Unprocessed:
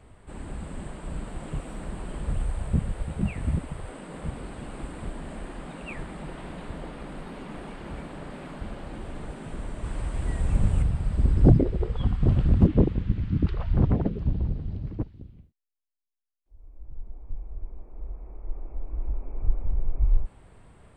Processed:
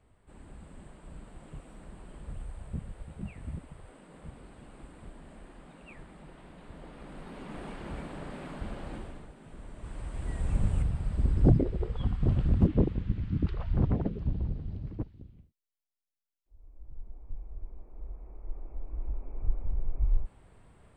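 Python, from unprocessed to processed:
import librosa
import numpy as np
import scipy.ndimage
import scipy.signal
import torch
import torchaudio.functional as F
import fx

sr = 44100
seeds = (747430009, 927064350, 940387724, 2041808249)

y = fx.gain(x, sr, db=fx.line((6.55, -12.5), (7.66, -2.0), (8.95, -2.0), (9.33, -13.5), (10.48, -5.0)))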